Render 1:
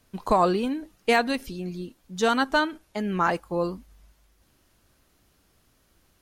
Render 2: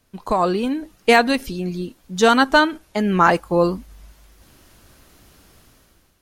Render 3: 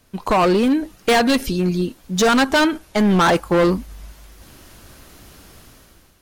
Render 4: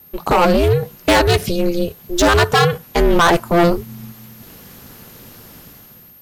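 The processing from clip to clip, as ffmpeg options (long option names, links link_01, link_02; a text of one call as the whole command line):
ffmpeg -i in.wav -af "dynaudnorm=framelen=180:gausssize=7:maxgain=13.5dB" out.wav
ffmpeg -i in.wav -filter_complex "[0:a]asplit=2[link_01][link_02];[link_02]alimiter=limit=-8.5dB:level=0:latency=1:release=103,volume=-2dB[link_03];[link_01][link_03]amix=inputs=2:normalize=0,volume=13.5dB,asoftclip=hard,volume=-13.5dB,volume=1.5dB" out.wav
ffmpeg -i in.wav -af "aeval=exprs='val(0)+0.00562*sin(2*PI*13000*n/s)':channel_layout=same,aeval=exprs='val(0)*sin(2*PI*170*n/s)':channel_layout=same,volume=5.5dB" out.wav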